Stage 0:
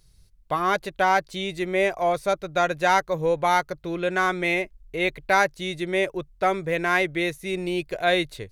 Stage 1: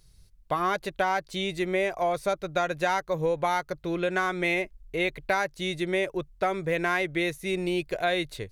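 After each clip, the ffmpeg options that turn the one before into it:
-af "acompressor=threshold=-22dB:ratio=6"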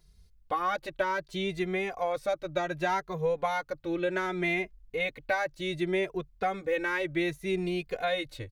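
-filter_complex "[0:a]equalizer=f=10k:w=0.64:g=-6,asplit=2[a][b];[b]adelay=2.5,afreqshift=0.66[c];[a][c]amix=inputs=2:normalize=1"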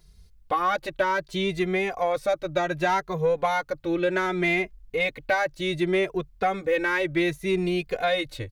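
-af "asoftclip=type=tanh:threshold=-17.5dB,volume=6dB"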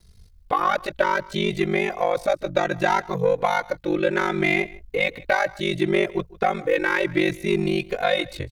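-af "aeval=exprs='val(0)*sin(2*PI*24*n/s)':c=same,aecho=1:1:152:0.0841,volume=5.5dB"

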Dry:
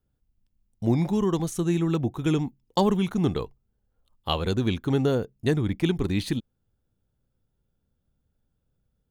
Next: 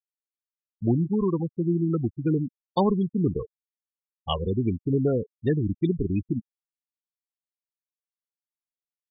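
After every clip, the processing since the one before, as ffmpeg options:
-af "afftfilt=real='re*gte(hypot(re,im),0.112)':imag='im*gte(hypot(re,im),0.112)':win_size=1024:overlap=0.75"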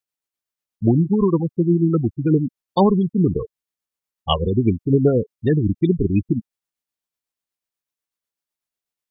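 -af "tremolo=f=8.1:d=0.36,volume=8.5dB"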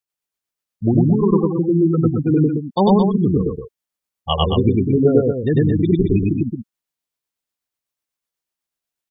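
-af "aecho=1:1:99.13|221.6:1|0.501,volume=-1dB"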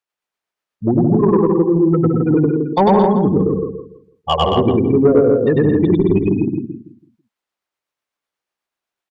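-filter_complex "[0:a]asplit=2[a][b];[b]adelay=165,lowpass=f=1.2k:p=1,volume=-4dB,asplit=2[c][d];[d]adelay=165,lowpass=f=1.2k:p=1,volume=0.27,asplit=2[e][f];[f]adelay=165,lowpass=f=1.2k:p=1,volume=0.27,asplit=2[g][h];[h]adelay=165,lowpass=f=1.2k:p=1,volume=0.27[i];[a][c][e][g][i]amix=inputs=5:normalize=0,asplit=2[j][k];[k]highpass=f=720:p=1,volume=15dB,asoftclip=type=tanh:threshold=-1dB[l];[j][l]amix=inputs=2:normalize=0,lowpass=f=1.5k:p=1,volume=-6dB"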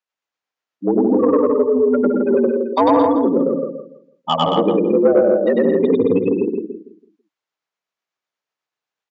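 -af "afreqshift=86,aresample=16000,aresample=44100,volume=-1.5dB"

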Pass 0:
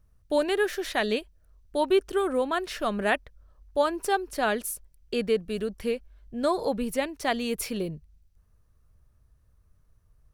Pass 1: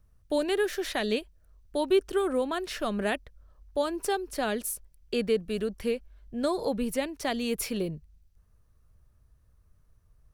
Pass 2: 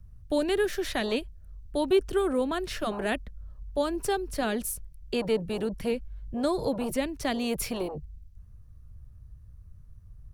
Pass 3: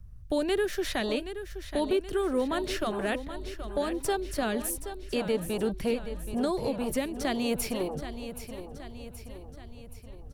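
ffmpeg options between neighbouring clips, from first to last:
-filter_complex "[0:a]acrossover=split=480|3000[a][b][c];[b]acompressor=threshold=-32dB:ratio=3[d];[a][d][c]amix=inputs=3:normalize=0"
-filter_complex "[0:a]lowshelf=f=90:g=-8,acrossover=split=160|1600[a][b][c];[a]aeval=exprs='0.02*sin(PI/2*6.31*val(0)/0.02)':c=same[d];[d][b][c]amix=inputs=3:normalize=0"
-af "alimiter=limit=-21dB:level=0:latency=1:release=343,aecho=1:1:775|1550|2325|3100|3875|4650:0.282|0.149|0.0792|0.042|0.0222|0.0118,volume=1.5dB"

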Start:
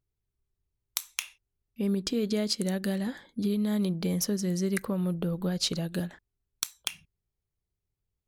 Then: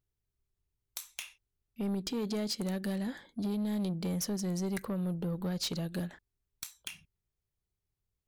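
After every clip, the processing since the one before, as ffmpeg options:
-af "asoftclip=type=tanh:threshold=-26.5dB,volume=-2dB"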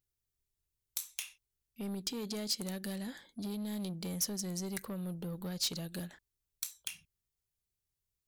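-af "highshelf=f=3.1k:g=11,volume=-6dB"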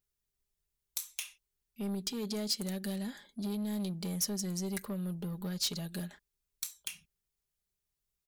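-af "aecho=1:1:4.9:0.48"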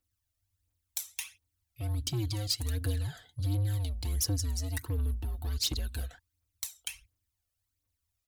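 -af "afreqshift=-110,aphaser=in_gain=1:out_gain=1:delay=1.7:decay=0.56:speed=1.4:type=triangular"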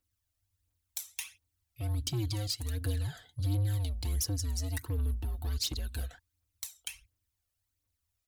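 -af "alimiter=limit=-21.5dB:level=0:latency=1:release=369"

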